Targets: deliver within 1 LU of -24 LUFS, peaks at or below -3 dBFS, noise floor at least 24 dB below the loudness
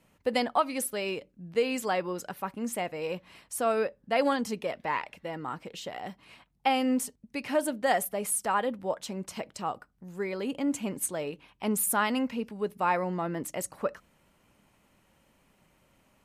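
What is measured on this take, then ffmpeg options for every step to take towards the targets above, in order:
loudness -31.0 LUFS; peak -13.0 dBFS; loudness target -24.0 LUFS
-> -af "volume=7dB"

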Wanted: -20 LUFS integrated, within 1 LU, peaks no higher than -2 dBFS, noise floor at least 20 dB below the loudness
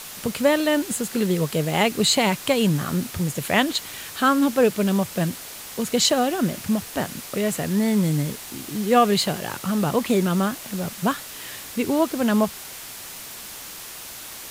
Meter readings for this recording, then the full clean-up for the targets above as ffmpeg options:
noise floor -38 dBFS; noise floor target -43 dBFS; loudness -22.5 LUFS; peak -5.0 dBFS; loudness target -20.0 LUFS
-> -af "afftdn=nr=6:nf=-38"
-af "volume=2.5dB"

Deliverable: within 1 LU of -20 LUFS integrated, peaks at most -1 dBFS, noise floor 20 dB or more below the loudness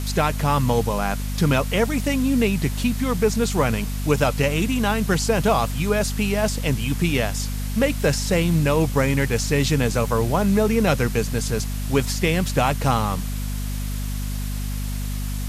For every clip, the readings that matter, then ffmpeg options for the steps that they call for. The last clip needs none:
hum 50 Hz; harmonics up to 250 Hz; hum level -24 dBFS; noise floor -26 dBFS; noise floor target -42 dBFS; loudness -22.0 LUFS; peak -5.5 dBFS; loudness target -20.0 LUFS
-> -af "bandreject=f=50:t=h:w=4,bandreject=f=100:t=h:w=4,bandreject=f=150:t=h:w=4,bandreject=f=200:t=h:w=4,bandreject=f=250:t=h:w=4"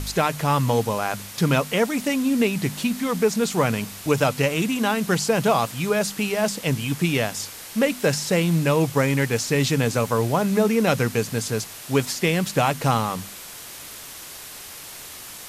hum none; noise floor -39 dBFS; noise floor target -43 dBFS
-> -af "afftdn=nr=6:nf=-39"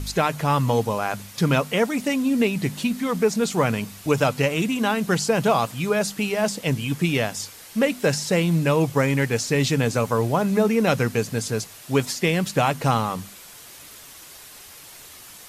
noise floor -44 dBFS; loudness -22.5 LUFS; peak -6.5 dBFS; loudness target -20.0 LUFS
-> -af "volume=2.5dB"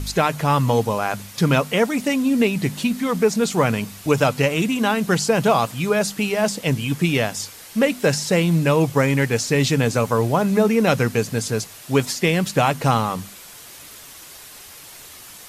loudness -20.0 LUFS; peak -4.0 dBFS; noise floor -42 dBFS

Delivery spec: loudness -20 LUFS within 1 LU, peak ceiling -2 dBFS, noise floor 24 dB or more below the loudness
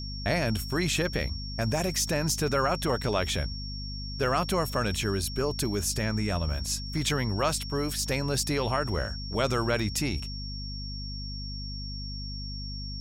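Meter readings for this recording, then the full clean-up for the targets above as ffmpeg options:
hum 50 Hz; harmonics up to 250 Hz; hum level -35 dBFS; steady tone 5500 Hz; tone level -39 dBFS; loudness -29.5 LUFS; peak -13.5 dBFS; loudness target -20.0 LUFS
-> -af "bandreject=f=50:t=h:w=4,bandreject=f=100:t=h:w=4,bandreject=f=150:t=h:w=4,bandreject=f=200:t=h:w=4,bandreject=f=250:t=h:w=4"
-af "bandreject=f=5.5k:w=30"
-af "volume=9.5dB"

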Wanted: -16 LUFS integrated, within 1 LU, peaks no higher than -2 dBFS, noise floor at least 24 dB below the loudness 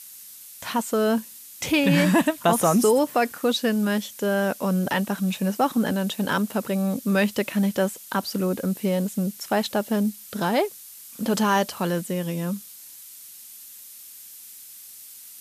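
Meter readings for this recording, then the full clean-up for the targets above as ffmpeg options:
noise floor -44 dBFS; noise floor target -48 dBFS; loudness -24.0 LUFS; peak -8.5 dBFS; loudness target -16.0 LUFS
-> -af "afftdn=nr=6:nf=-44"
-af "volume=8dB,alimiter=limit=-2dB:level=0:latency=1"

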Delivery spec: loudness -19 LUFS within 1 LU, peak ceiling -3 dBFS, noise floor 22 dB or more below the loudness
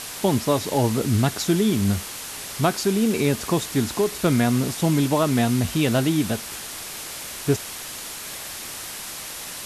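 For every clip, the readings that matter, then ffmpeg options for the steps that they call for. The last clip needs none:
noise floor -35 dBFS; noise floor target -46 dBFS; loudness -23.5 LUFS; peak -7.5 dBFS; loudness target -19.0 LUFS
-> -af "afftdn=nr=11:nf=-35"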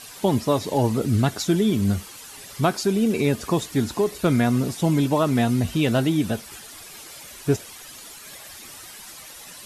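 noise floor -42 dBFS; noise floor target -45 dBFS
-> -af "afftdn=nr=6:nf=-42"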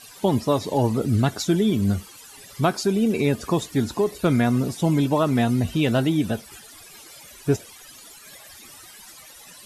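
noise floor -46 dBFS; loudness -22.5 LUFS; peak -8.0 dBFS; loudness target -19.0 LUFS
-> -af "volume=3.5dB"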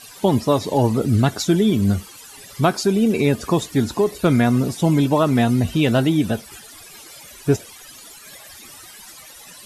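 loudness -19.0 LUFS; peak -4.5 dBFS; noise floor -42 dBFS

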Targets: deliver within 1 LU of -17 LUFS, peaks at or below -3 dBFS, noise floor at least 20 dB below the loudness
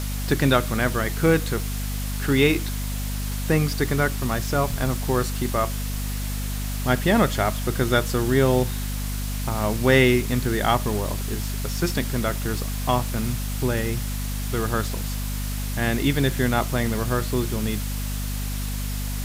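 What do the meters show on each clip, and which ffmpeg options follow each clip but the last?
hum 50 Hz; harmonics up to 250 Hz; hum level -25 dBFS; noise floor -28 dBFS; noise floor target -44 dBFS; loudness -24.0 LUFS; peak -5.0 dBFS; loudness target -17.0 LUFS
-> -af "bandreject=f=50:t=h:w=6,bandreject=f=100:t=h:w=6,bandreject=f=150:t=h:w=6,bandreject=f=200:t=h:w=6,bandreject=f=250:t=h:w=6"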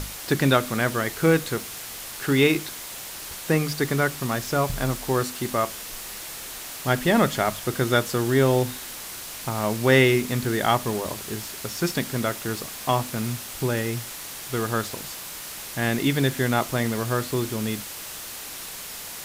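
hum none; noise floor -37 dBFS; noise floor target -45 dBFS
-> -af "afftdn=nr=8:nf=-37"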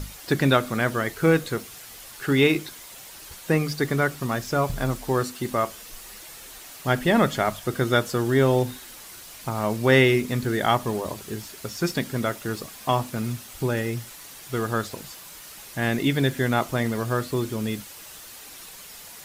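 noise floor -43 dBFS; noise floor target -45 dBFS
-> -af "afftdn=nr=6:nf=-43"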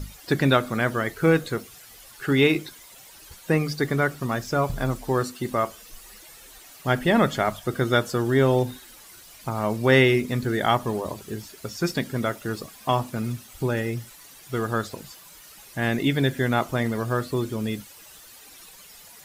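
noise floor -48 dBFS; loudness -24.5 LUFS; peak -5.5 dBFS; loudness target -17.0 LUFS
-> -af "volume=7.5dB,alimiter=limit=-3dB:level=0:latency=1"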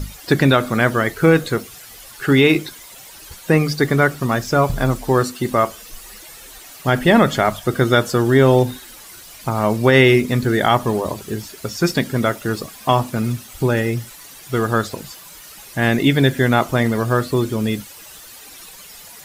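loudness -17.5 LUFS; peak -3.0 dBFS; noise floor -40 dBFS

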